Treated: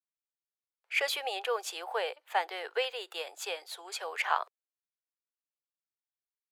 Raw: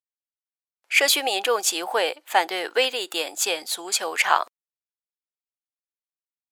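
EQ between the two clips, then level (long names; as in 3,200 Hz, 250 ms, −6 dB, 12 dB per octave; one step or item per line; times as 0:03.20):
Chebyshev high-pass filter 420 Hz, order 4
parametric band 7,200 Hz −7 dB 1.4 octaves
high-shelf EQ 12,000 Hz −10 dB
−9.0 dB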